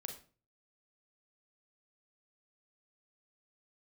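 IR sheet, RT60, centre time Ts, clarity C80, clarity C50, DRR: 0.40 s, 19 ms, 13.5 dB, 8.0 dB, 3.0 dB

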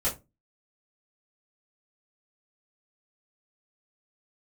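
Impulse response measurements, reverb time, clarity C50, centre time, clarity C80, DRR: 0.25 s, 13.0 dB, 22 ms, 20.5 dB, -10.5 dB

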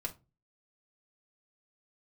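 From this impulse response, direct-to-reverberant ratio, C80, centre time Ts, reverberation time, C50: -0.5 dB, 25.5 dB, 7 ms, 0.25 s, 17.0 dB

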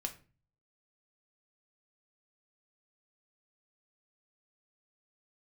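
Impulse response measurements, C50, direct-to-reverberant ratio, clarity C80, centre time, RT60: 13.5 dB, 4.0 dB, 19.0 dB, 8 ms, 0.35 s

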